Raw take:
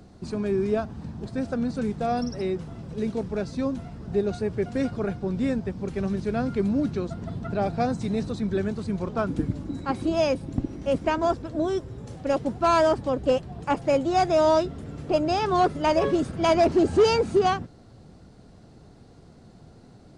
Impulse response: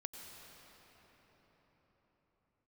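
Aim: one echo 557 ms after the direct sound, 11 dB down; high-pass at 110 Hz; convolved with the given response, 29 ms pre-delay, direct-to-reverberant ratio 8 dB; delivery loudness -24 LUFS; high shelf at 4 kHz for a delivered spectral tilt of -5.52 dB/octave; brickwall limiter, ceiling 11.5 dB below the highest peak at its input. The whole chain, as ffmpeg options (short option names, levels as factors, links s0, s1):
-filter_complex "[0:a]highpass=110,highshelf=f=4000:g=8,alimiter=limit=0.0944:level=0:latency=1,aecho=1:1:557:0.282,asplit=2[s0][s1];[1:a]atrim=start_sample=2205,adelay=29[s2];[s1][s2]afir=irnorm=-1:irlink=0,volume=0.531[s3];[s0][s3]amix=inputs=2:normalize=0,volume=1.88"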